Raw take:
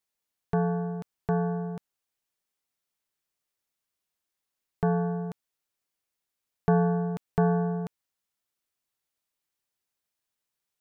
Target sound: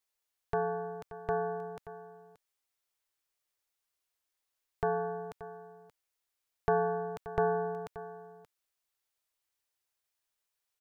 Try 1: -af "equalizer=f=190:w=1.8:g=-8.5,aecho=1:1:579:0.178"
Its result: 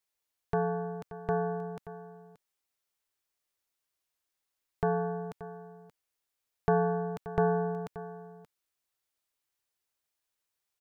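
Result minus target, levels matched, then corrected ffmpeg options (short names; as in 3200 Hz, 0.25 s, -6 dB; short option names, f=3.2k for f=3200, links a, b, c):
250 Hz band +6.5 dB
-af "equalizer=f=190:w=1.8:g=-19,aecho=1:1:579:0.178"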